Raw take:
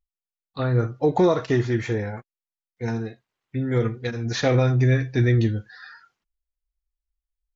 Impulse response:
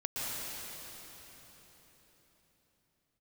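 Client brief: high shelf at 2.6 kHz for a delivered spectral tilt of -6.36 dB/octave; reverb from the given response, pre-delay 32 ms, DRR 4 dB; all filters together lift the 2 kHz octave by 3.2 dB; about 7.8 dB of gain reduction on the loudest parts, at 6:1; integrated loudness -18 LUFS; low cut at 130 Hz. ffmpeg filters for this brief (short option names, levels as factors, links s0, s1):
-filter_complex "[0:a]highpass=130,equalizer=f=2000:t=o:g=6,highshelf=f=2600:g=-5.5,acompressor=threshold=0.0708:ratio=6,asplit=2[s0][s1];[1:a]atrim=start_sample=2205,adelay=32[s2];[s1][s2]afir=irnorm=-1:irlink=0,volume=0.335[s3];[s0][s3]amix=inputs=2:normalize=0,volume=3.16"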